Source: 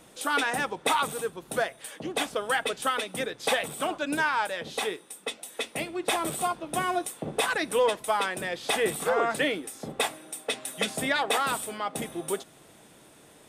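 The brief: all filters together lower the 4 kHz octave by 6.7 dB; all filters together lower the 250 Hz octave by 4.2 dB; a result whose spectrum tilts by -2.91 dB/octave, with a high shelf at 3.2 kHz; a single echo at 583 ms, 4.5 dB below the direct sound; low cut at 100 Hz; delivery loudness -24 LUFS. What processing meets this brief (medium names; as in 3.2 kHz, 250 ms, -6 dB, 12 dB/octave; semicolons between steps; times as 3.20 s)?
high-pass 100 Hz; peaking EQ 250 Hz -5.5 dB; treble shelf 3.2 kHz -8 dB; peaking EQ 4 kHz -3 dB; delay 583 ms -4.5 dB; trim +6 dB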